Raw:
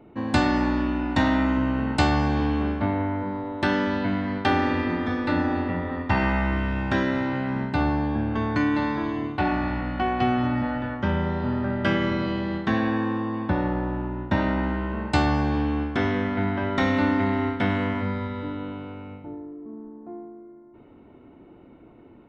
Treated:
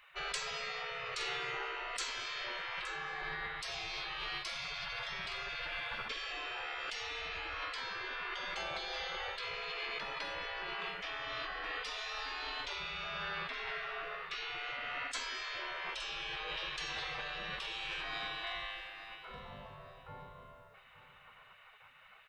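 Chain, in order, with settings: spectral gate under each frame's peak -25 dB weak; 2.86–3.46 s: comb 5.3 ms, depth 87%; in parallel at +2.5 dB: compressor with a negative ratio -50 dBFS, ratio -0.5; on the sum: feedback delay 868 ms, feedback 27%, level -14.5 dB

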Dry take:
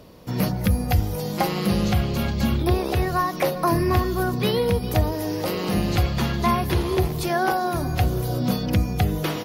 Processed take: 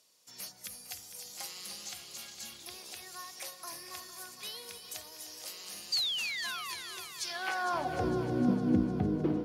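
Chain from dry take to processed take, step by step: painted sound fall, 5.92–6.75 s, 960–4800 Hz -20 dBFS; band-pass sweep 7.6 kHz -> 290 Hz, 7.15–8.12 s; multi-head delay 152 ms, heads second and third, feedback 59%, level -12 dB; trim +1 dB

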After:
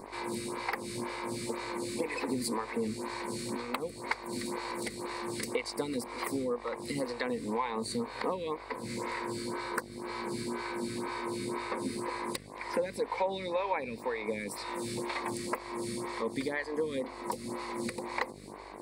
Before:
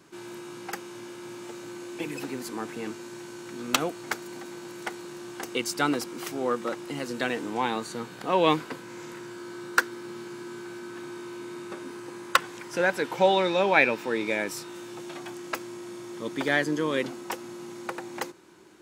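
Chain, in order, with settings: rippled EQ curve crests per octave 0.94, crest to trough 12 dB; compression 10:1, threshold -36 dBFS, peak gain reduction 23.5 dB; mains buzz 50 Hz, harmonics 23, -55 dBFS -1 dB/octave; lamp-driven phase shifter 2 Hz; trim +8.5 dB

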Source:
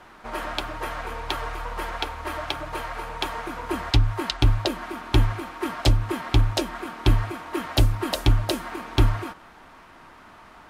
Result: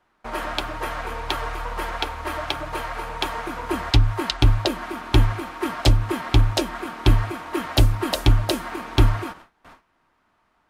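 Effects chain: gate with hold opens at -36 dBFS; trim +2.5 dB

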